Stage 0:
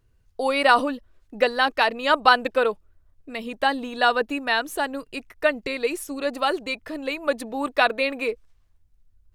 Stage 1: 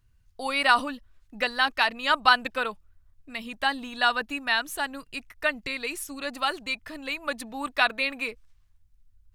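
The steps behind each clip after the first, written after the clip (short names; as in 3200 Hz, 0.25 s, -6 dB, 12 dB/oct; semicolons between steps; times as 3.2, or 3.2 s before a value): bell 440 Hz -13.5 dB 1.4 oct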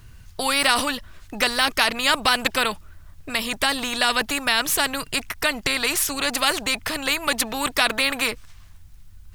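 in parallel at +2 dB: limiter -16 dBFS, peak gain reduction 11 dB; on the sum: spectral compressor 2:1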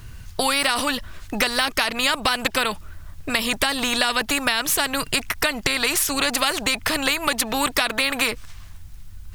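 compressor, threshold -24 dBFS, peak gain reduction 10 dB; gain +6.5 dB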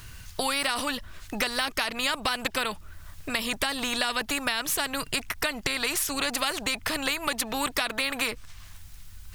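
mismatched tape noise reduction encoder only; gain -6.5 dB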